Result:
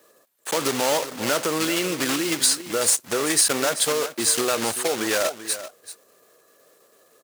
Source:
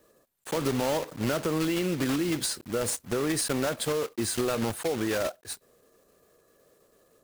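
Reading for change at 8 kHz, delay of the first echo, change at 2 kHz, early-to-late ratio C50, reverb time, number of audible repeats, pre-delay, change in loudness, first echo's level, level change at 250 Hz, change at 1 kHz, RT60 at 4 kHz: +12.0 dB, 387 ms, +8.5 dB, no reverb, no reverb, 1, no reverb, +7.0 dB, -13.0 dB, +1.0 dB, +7.5 dB, no reverb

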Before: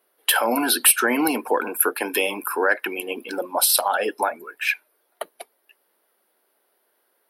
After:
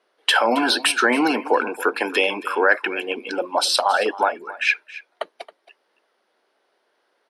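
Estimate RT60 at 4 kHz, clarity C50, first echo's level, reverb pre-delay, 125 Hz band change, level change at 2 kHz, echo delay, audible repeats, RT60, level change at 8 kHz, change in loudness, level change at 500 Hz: no reverb, no reverb, -17.5 dB, no reverb, no reading, +3.5 dB, 272 ms, 1, no reverb, -9.5 dB, +1.0 dB, +2.5 dB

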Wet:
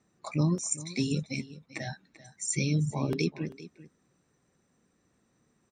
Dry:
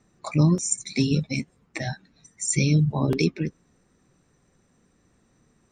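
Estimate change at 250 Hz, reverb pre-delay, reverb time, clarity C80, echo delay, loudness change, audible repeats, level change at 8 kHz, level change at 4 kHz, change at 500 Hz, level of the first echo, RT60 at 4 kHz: -7.0 dB, no reverb, no reverb, no reverb, 391 ms, -7.0 dB, 1, -6.0 dB, -6.0 dB, -6.0 dB, -17.0 dB, no reverb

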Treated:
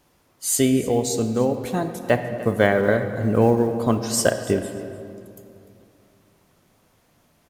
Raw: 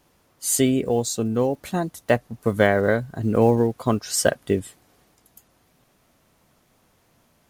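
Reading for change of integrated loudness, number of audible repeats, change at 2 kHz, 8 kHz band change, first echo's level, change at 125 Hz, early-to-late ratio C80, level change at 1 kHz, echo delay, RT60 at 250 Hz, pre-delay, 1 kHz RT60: +0.5 dB, 1, +0.5 dB, +0.5 dB, -17.5 dB, +1.0 dB, 9.0 dB, +0.5 dB, 298 ms, 3.0 s, 25 ms, 2.5 s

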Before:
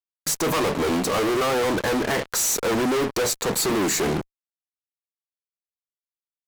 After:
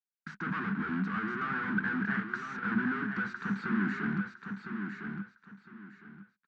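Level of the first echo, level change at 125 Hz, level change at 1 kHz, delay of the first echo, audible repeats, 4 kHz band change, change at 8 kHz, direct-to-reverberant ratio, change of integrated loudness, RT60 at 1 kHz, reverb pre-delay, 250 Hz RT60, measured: -6.5 dB, -5.5 dB, -10.0 dB, 1008 ms, 3, -24.5 dB, under -40 dB, no reverb, -11.0 dB, no reverb, no reverb, no reverb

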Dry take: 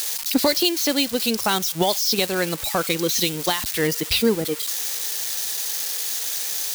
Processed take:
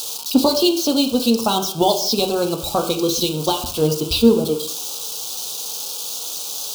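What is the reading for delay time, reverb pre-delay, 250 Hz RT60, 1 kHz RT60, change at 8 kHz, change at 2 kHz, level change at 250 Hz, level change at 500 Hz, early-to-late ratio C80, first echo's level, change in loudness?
no echo, 3 ms, 0.65 s, 0.60 s, -1.0 dB, -8.5 dB, +6.0 dB, +5.0 dB, 12.5 dB, no echo, +2.0 dB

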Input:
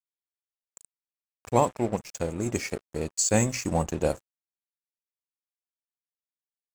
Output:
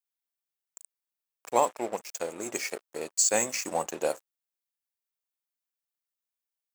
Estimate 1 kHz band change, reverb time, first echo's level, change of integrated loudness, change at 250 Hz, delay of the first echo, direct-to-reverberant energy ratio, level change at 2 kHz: -0.5 dB, no reverb, no echo, -1.5 dB, -10.0 dB, no echo, no reverb, 0.0 dB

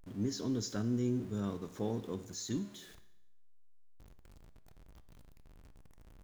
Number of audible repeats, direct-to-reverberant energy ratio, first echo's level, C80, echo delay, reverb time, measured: no echo, 11.0 dB, no echo, 16.5 dB, no echo, 0.90 s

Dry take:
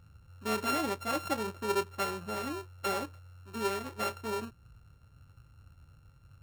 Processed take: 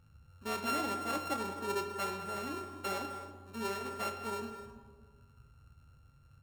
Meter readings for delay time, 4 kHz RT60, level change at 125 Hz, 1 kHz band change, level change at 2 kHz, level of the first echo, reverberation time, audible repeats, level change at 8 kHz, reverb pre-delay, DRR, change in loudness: 201 ms, 0.85 s, -4.5 dB, -2.0 dB, -3.0 dB, -14.0 dB, 1.6 s, 2, -3.0 dB, 5 ms, 4.0 dB, -3.0 dB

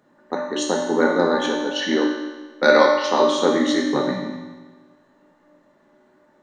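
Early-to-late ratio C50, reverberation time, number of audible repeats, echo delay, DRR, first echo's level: 2.0 dB, 1.3 s, no echo, no echo, -3.0 dB, no echo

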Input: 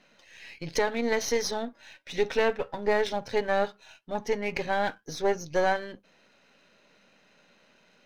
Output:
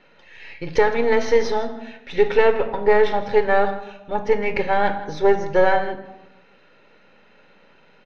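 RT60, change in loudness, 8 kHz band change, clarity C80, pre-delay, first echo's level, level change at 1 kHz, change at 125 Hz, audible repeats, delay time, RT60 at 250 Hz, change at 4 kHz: 1.0 s, +8.5 dB, no reading, 12.0 dB, 26 ms, -17.0 dB, +9.0 dB, +7.0 dB, 1, 161 ms, 1.3 s, +1.5 dB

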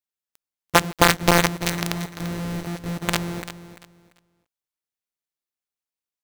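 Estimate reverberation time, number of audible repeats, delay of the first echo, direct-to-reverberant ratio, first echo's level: no reverb, 2, 342 ms, no reverb, -13.0 dB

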